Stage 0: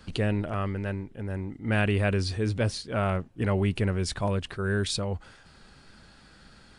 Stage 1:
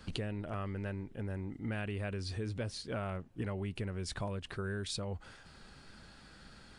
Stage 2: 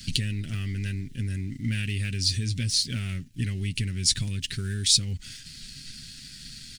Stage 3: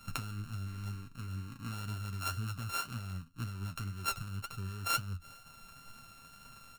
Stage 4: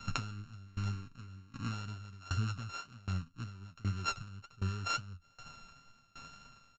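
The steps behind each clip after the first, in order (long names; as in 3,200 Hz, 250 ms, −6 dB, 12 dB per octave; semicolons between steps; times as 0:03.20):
downward compressor, threshold −33 dBFS, peak gain reduction 12.5 dB; level −2 dB
comb filter 7.5 ms, depth 41%; leveller curve on the samples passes 1; drawn EQ curve 220 Hz 0 dB, 640 Hz −28 dB, 1,100 Hz −25 dB, 1,900 Hz −1 dB, 3,400 Hz +6 dB, 5,600 Hz +12 dB, 9,100 Hz +10 dB; level +6.5 dB
samples sorted by size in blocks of 32 samples; flanger 2 Hz, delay 7.9 ms, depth 4.6 ms, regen +57%; level −7.5 dB
downsampling to 16,000 Hz; tremolo with a ramp in dB decaying 1.3 Hz, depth 24 dB; level +7.5 dB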